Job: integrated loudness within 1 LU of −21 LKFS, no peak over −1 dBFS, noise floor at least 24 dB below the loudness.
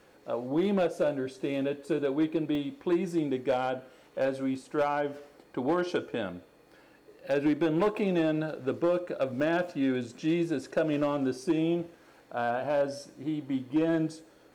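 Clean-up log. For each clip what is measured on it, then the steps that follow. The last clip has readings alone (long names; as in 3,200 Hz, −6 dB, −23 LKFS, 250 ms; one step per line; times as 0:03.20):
share of clipped samples 1.0%; peaks flattened at −20.0 dBFS; number of dropouts 2; longest dropout 1.1 ms; integrated loudness −30.0 LKFS; sample peak −20.0 dBFS; target loudness −21.0 LKFS
→ clipped peaks rebuilt −20 dBFS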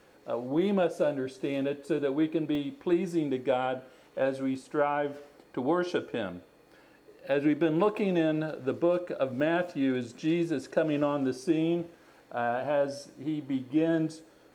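share of clipped samples 0.0%; number of dropouts 2; longest dropout 1.1 ms
→ repair the gap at 0:02.55/0:09.40, 1.1 ms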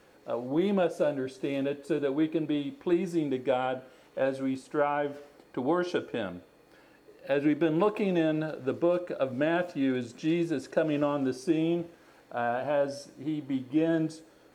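number of dropouts 0; integrated loudness −29.5 LKFS; sample peak −13.5 dBFS; target loudness −21.0 LKFS
→ level +8.5 dB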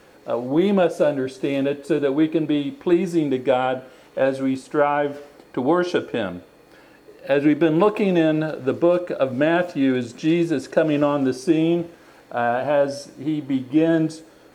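integrated loudness −21.0 LKFS; sample peak −5.0 dBFS; background noise floor −51 dBFS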